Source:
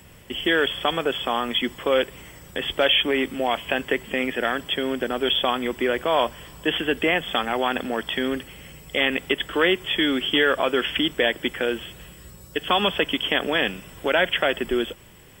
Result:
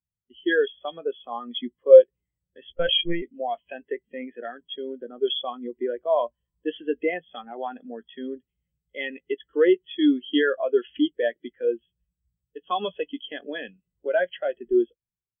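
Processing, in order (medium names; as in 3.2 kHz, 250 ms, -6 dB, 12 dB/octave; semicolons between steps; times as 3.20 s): doubling 17 ms -12.5 dB; 2.73–3.22 s: monotone LPC vocoder at 8 kHz 170 Hz; spectral contrast expander 2.5:1; trim +2 dB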